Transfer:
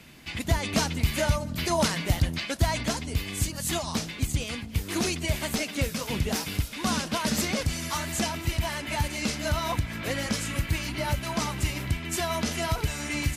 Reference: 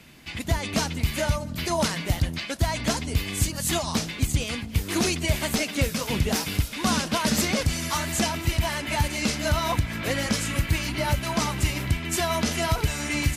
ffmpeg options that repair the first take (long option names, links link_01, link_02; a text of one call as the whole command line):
ffmpeg -i in.wav -af "asetnsamples=nb_out_samples=441:pad=0,asendcmd='2.83 volume volume 3.5dB',volume=0dB" out.wav